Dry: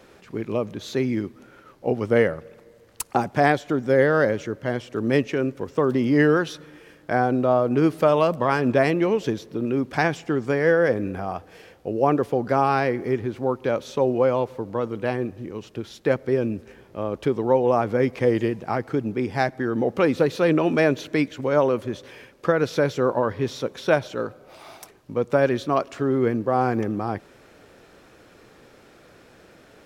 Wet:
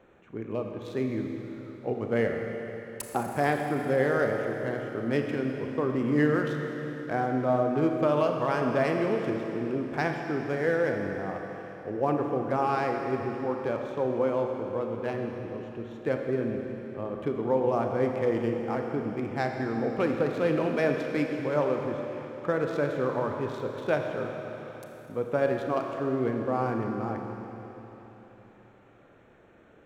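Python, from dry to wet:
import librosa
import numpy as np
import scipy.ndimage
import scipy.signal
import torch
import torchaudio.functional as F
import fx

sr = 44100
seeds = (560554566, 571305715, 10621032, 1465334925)

y = fx.wiener(x, sr, points=9)
y = fx.rev_schroeder(y, sr, rt60_s=3.8, comb_ms=27, drr_db=2.5)
y = F.gain(torch.from_numpy(y), -7.5).numpy()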